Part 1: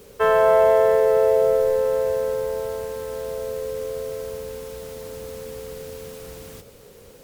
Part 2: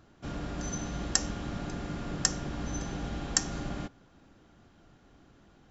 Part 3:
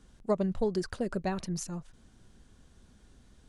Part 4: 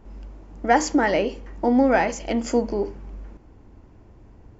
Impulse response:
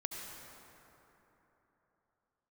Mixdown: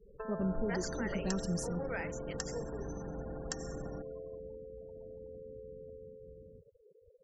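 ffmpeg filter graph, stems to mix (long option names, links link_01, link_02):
-filter_complex "[0:a]acompressor=threshold=-23dB:ratio=6,volume=-12.5dB[link_01];[1:a]adelay=150,volume=-6dB,asplit=2[link_02][link_03];[link_03]volume=-10dB[link_04];[2:a]aecho=1:1:5.1:0.66,volume=-4.5dB,asplit=2[link_05][link_06];[link_06]volume=-21.5dB[link_07];[3:a]highpass=frequency=440:width=0.5412,highpass=frequency=440:width=1.3066,acompressor=mode=upward:threshold=-36dB:ratio=2.5,volume=-14dB[link_08];[link_05][link_08]amix=inputs=2:normalize=0,equalizer=frequency=730:width_type=o:width=0.7:gain=-14,alimiter=level_in=4dB:limit=-24dB:level=0:latency=1:release=49,volume=-4dB,volume=0dB[link_09];[link_01][link_02]amix=inputs=2:normalize=0,lowpass=frequency=2100:poles=1,acompressor=threshold=-41dB:ratio=3,volume=0dB[link_10];[4:a]atrim=start_sample=2205[link_11];[link_04][link_07]amix=inputs=2:normalize=0[link_12];[link_12][link_11]afir=irnorm=-1:irlink=0[link_13];[link_09][link_10][link_13]amix=inputs=3:normalize=0,afftfilt=real='re*gte(hypot(re,im),0.00562)':imag='im*gte(hypot(re,im),0.00562)':win_size=1024:overlap=0.75"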